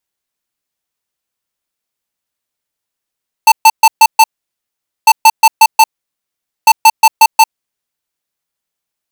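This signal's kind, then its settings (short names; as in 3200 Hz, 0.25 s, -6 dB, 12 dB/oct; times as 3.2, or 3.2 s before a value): beep pattern square 888 Hz, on 0.05 s, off 0.13 s, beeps 5, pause 0.83 s, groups 3, -3.5 dBFS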